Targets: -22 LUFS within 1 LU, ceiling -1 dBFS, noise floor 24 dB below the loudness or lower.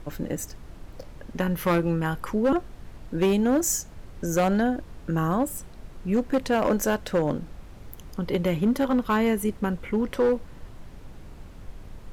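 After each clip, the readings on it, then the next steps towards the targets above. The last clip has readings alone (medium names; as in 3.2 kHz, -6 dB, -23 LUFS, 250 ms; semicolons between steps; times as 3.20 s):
clipped samples 1.6%; clipping level -16.5 dBFS; noise floor -44 dBFS; noise floor target -50 dBFS; loudness -25.5 LUFS; peak level -16.5 dBFS; loudness target -22.0 LUFS
-> clip repair -16.5 dBFS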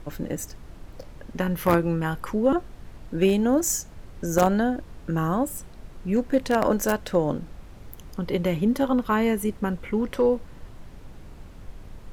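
clipped samples 0.0%; noise floor -44 dBFS; noise floor target -49 dBFS
-> noise print and reduce 6 dB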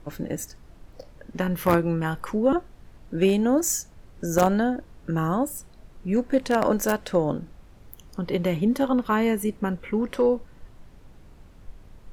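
noise floor -50 dBFS; loudness -25.0 LUFS; peak level -7.5 dBFS; loudness target -22.0 LUFS
-> trim +3 dB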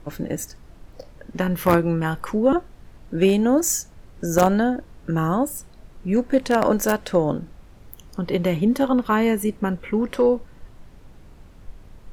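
loudness -22.0 LUFS; peak level -4.5 dBFS; noise floor -47 dBFS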